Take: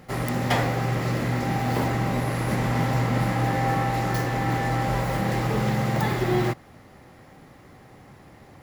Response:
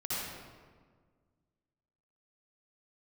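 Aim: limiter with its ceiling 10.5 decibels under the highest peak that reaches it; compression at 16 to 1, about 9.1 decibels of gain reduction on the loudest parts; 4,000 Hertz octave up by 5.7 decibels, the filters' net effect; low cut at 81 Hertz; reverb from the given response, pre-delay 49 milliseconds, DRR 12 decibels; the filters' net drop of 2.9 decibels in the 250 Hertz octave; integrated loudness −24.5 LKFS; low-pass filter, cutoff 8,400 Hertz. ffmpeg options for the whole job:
-filter_complex "[0:a]highpass=81,lowpass=8400,equalizer=frequency=250:width_type=o:gain=-4,equalizer=frequency=4000:width_type=o:gain=7.5,acompressor=threshold=-27dB:ratio=16,alimiter=level_in=3dB:limit=-24dB:level=0:latency=1,volume=-3dB,asplit=2[link_01][link_02];[1:a]atrim=start_sample=2205,adelay=49[link_03];[link_02][link_03]afir=irnorm=-1:irlink=0,volume=-17dB[link_04];[link_01][link_04]amix=inputs=2:normalize=0,volume=10.5dB"

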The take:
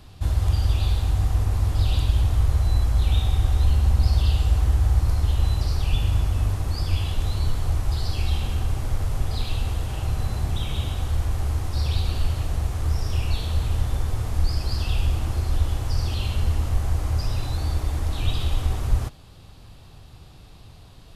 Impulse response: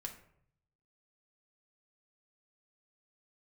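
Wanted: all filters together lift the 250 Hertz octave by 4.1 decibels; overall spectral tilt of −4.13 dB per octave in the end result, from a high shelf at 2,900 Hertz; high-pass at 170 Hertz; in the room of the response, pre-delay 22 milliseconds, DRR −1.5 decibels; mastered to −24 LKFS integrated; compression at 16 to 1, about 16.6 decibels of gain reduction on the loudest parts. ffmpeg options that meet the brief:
-filter_complex "[0:a]highpass=170,equalizer=frequency=250:width_type=o:gain=7.5,highshelf=frequency=2900:gain=9,acompressor=threshold=-42dB:ratio=16,asplit=2[link_01][link_02];[1:a]atrim=start_sample=2205,adelay=22[link_03];[link_02][link_03]afir=irnorm=-1:irlink=0,volume=4dB[link_04];[link_01][link_04]amix=inputs=2:normalize=0,volume=17dB"

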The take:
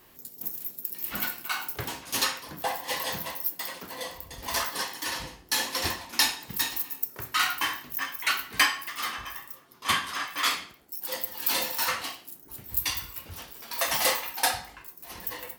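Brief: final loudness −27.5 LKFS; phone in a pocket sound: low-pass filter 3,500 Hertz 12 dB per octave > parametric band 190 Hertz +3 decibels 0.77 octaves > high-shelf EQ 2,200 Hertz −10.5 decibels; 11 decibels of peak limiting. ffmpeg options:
ffmpeg -i in.wav -af "alimiter=limit=-19dB:level=0:latency=1,lowpass=3500,equalizer=frequency=190:width_type=o:width=0.77:gain=3,highshelf=frequency=2200:gain=-10.5,volume=11dB" out.wav

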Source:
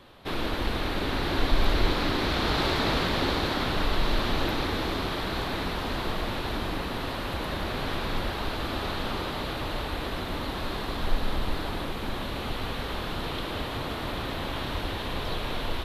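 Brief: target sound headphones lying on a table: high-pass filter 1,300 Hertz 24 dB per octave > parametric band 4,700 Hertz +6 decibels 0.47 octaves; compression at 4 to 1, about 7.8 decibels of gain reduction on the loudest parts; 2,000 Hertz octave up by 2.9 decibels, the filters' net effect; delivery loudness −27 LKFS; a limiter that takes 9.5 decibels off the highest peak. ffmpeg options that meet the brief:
ffmpeg -i in.wav -af "equalizer=frequency=2000:width_type=o:gain=4,acompressor=threshold=-26dB:ratio=4,alimiter=level_in=2dB:limit=-24dB:level=0:latency=1,volume=-2dB,highpass=frequency=1300:width=0.5412,highpass=frequency=1300:width=1.3066,equalizer=frequency=4700:width_type=o:width=0.47:gain=6,volume=10dB" out.wav

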